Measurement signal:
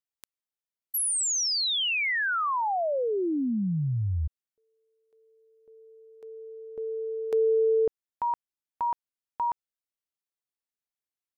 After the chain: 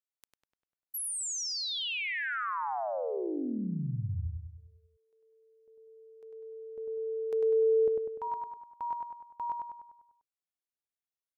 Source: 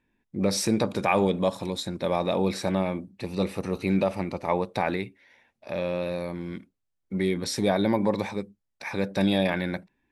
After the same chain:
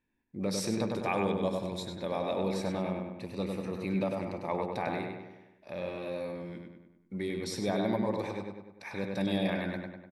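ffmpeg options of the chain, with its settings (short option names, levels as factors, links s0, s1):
-filter_complex "[0:a]asplit=2[s0][s1];[s1]adelay=99,lowpass=f=3600:p=1,volume=0.708,asplit=2[s2][s3];[s3]adelay=99,lowpass=f=3600:p=1,volume=0.54,asplit=2[s4][s5];[s5]adelay=99,lowpass=f=3600:p=1,volume=0.54,asplit=2[s6][s7];[s7]adelay=99,lowpass=f=3600:p=1,volume=0.54,asplit=2[s8][s9];[s9]adelay=99,lowpass=f=3600:p=1,volume=0.54,asplit=2[s10][s11];[s11]adelay=99,lowpass=f=3600:p=1,volume=0.54,asplit=2[s12][s13];[s13]adelay=99,lowpass=f=3600:p=1,volume=0.54[s14];[s0][s2][s4][s6][s8][s10][s12][s14]amix=inputs=8:normalize=0,volume=0.376"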